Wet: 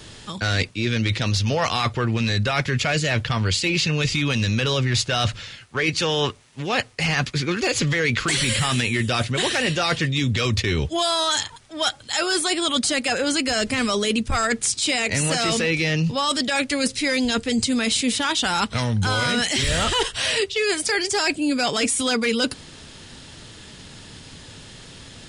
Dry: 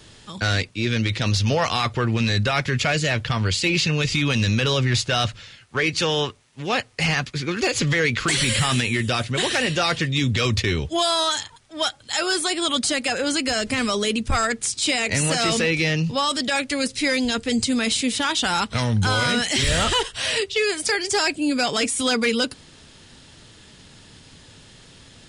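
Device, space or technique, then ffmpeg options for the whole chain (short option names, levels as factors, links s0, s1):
compression on the reversed sound: -af "areverse,acompressor=threshold=0.0631:ratio=6,areverse,volume=1.88"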